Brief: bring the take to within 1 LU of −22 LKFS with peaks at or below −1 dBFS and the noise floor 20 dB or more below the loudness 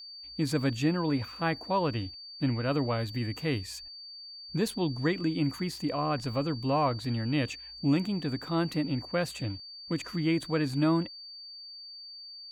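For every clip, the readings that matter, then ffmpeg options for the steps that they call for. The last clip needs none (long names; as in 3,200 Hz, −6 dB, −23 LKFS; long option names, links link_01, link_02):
interfering tone 4,600 Hz; level of the tone −43 dBFS; integrated loudness −30.5 LKFS; sample peak −15.5 dBFS; target loudness −22.0 LKFS
→ -af "bandreject=frequency=4600:width=30"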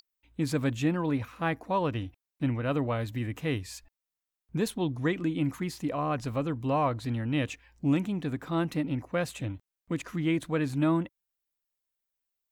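interfering tone none found; integrated loudness −30.5 LKFS; sample peak −16.0 dBFS; target loudness −22.0 LKFS
→ -af "volume=8.5dB"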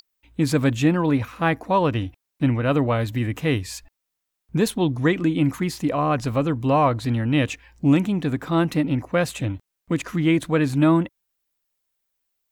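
integrated loudness −22.0 LKFS; sample peak −7.5 dBFS; background noise floor −81 dBFS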